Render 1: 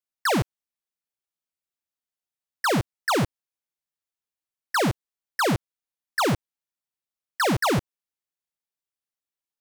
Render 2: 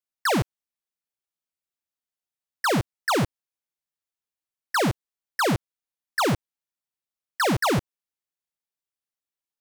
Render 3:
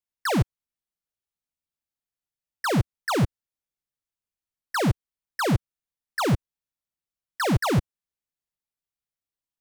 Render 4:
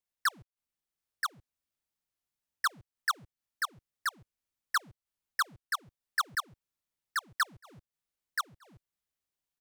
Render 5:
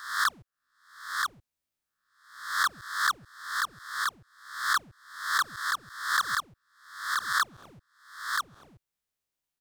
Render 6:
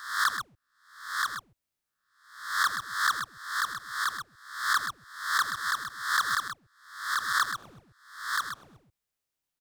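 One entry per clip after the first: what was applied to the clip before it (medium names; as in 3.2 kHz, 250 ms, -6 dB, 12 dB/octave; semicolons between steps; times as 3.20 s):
no audible change
bass shelf 170 Hz +12 dB; trim -3.5 dB
inverted gate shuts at -22 dBFS, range -34 dB; on a send: delay 978 ms -3.5 dB
reverse spectral sustain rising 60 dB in 0.63 s
delay 129 ms -8.5 dB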